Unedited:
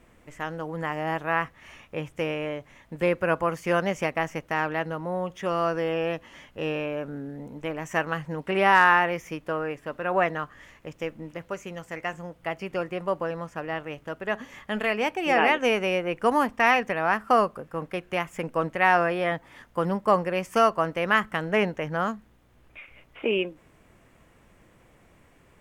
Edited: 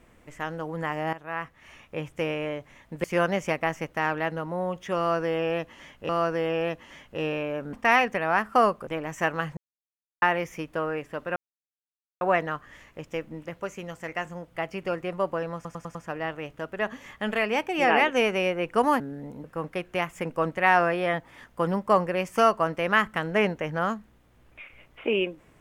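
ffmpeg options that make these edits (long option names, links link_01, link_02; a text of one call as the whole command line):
ffmpeg -i in.wav -filter_complex "[0:a]asplit=15[link_01][link_02][link_03][link_04][link_05][link_06][link_07][link_08][link_09][link_10][link_11][link_12][link_13][link_14][link_15];[link_01]atrim=end=1.13,asetpts=PTS-STARTPTS,afade=type=out:start_time=1.126:duration=0.004:curve=hsin:silence=0.188365[link_16];[link_02]atrim=start=1.13:end=3.042,asetpts=PTS-STARTPTS,afade=type=in:duration=1.18:curve=qsin:silence=0.188365[link_17];[link_03]atrim=start=3.578:end=6.632[link_18];[link_04]atrim=start=5.518:end=7.162[link_19];[link_05]atrim=start=16.478:end=17.622[link_20];[link_06]atrim=start=7.598:end=8.3,asetpts=PTS-STARTPTS,afade=type=out:start_time=0.698:duration=0.004:curve=hsin[link_21];[link_07]atrim=start=8.3:end=8.95,asetpts=PTS-STARTPTS,volume=0[link_22];[link_08]atrim=start=8.95:end=10.09,asetpts=PTS-STARTPTS,afade=type=in:duration=0.004:curve=hsin,afade=type=out:start_time=1.136:duration=0.004:curve=hsin,apad=pad_dur=0.85[link_23];[link_09]atrim=start=10.09:end=13.532,asetpts=PTS-STARTPTS,afade=type=in:duration=0.004:curve=hsin[link_24];[link_10]atrim=start=13.428:end=13.532[link_25];[link_11]atrim=start=13.428:end=13.532[link_26];[link_12]atrim=start=13.428:end=13.532[link_27];[link_13]atrim=start=13.428:end=16.482[link_28];[link_14]atrim=start=7.158:end=7.602[link_29];[link_15]atrim=start=17.618[link_30];[link_16][link_17]concat=n=2:v=0:a=1[link_31];[link_31][link_18]acrossfade=duration=0.004:curve1=hsin:curve2=hsin[link_32];[link_32][link_19]acrossfade=duration=0.004:curve1=hsin:curve2=hsin[link_33];[link_33][link_20]acrossfade=duration=0.004:curve1=hsin:curve2=hsin[link_34];[link_21][link_22][link_23][link_24]concat=n=4:v=0:a=1[link_35];[link_34][link_35]acrossfade=duration=0.004:curve1=hsin:curve2=hsin[link_36];[link_36][link_25]acrossfade=duration=0.004:curve1=hsin:curve2=hsin[link_37];[link_37][link_26]acrossfade=duration=0.004:curve1=hsin:curve2=hsin[link_38];[link_38][link_27]acrossfade=duration=0.004:curve1=hsin:curve2=hsin[link_39];[link_39][link_28]acrossfade=duration=0.004:curve1=hsin:curve2=hsin[link_40];[link_40][link_29]acrossfade=duration=0.004:curve1=hsin:curve2=hsin[link_41];[link_41][link_30]acrossfade=duration=0.004:curve1=hsin:curve2=hsin" out.wav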